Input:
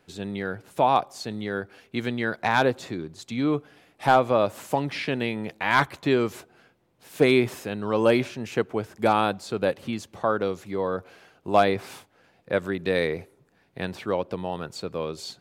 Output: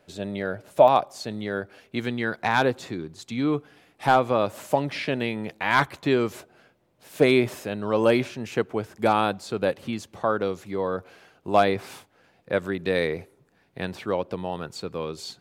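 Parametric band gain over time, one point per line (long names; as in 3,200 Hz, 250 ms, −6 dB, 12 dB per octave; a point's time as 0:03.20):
parametric band 600 Hz 0.22 octaves
+14 dB
from 0:00.88 +7 dB
from 0:02.00 −3.5 dB
from 0:04.53 +8 dB
from 0:05.21 +0.5 dB
from 0:06.31 +6.5 dB
from 0:08.04 0 dB
from 0:14.67 −6.5 dB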